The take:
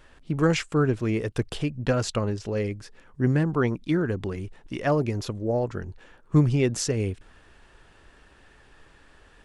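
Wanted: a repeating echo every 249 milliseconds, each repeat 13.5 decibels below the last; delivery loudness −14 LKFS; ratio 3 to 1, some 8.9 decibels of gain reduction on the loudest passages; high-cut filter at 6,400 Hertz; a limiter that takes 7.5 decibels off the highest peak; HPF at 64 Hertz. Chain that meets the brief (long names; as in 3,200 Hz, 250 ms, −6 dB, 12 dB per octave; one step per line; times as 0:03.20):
high-pass filter 64 Hz
low-pass filter 6,400 Hz
downward compressor 3 to 1, threshold −26 dBFS
brickwall limiter −23 dBFS
repeating echo 249 ms, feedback 21%, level −13.5 dB
level +19 dB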